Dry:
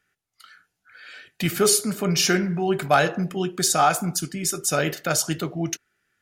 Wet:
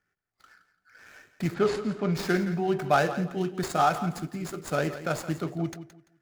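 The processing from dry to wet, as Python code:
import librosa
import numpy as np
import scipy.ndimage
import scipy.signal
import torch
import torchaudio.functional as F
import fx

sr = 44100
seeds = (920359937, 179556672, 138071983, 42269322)

y = scipy.signal.medfilt(x, 15)
y = fx.lowpass(y, sr, hz=5100.0, slope=12, at=(1.54, 2.13))
y = fx.echo_feedback(y, sr, ms=170, feedback_pct=25, wet_db=-13)
y = F.gain(torch.from_numpy(y), -3.5).numpy()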